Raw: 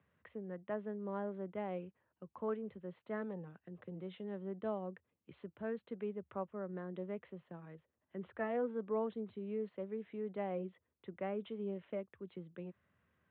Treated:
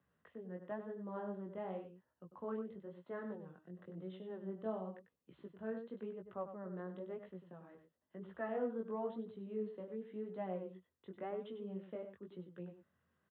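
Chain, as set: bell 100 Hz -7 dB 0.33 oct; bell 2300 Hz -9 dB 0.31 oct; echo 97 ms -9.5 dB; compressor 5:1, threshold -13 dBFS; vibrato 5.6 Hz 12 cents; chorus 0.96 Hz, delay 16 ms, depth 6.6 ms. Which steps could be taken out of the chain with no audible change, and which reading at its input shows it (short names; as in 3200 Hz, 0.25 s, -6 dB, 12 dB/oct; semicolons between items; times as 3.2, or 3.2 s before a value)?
compressor, threshold -13 dBFS: input peak -27.0 dBFS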